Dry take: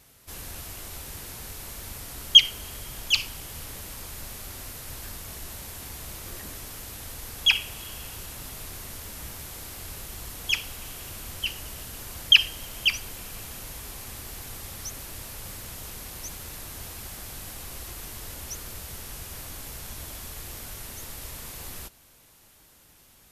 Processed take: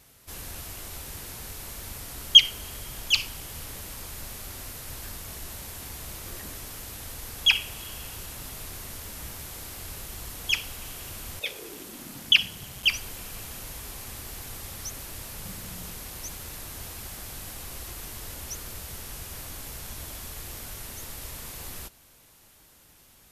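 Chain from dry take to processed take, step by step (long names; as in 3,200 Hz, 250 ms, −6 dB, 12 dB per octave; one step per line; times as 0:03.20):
0:11.39–0:12.82: ring modulation 560 Hz → 90 Hz
0:15.34–0:15.93: parametric band 180 Hz +12 dB 0.4 octaves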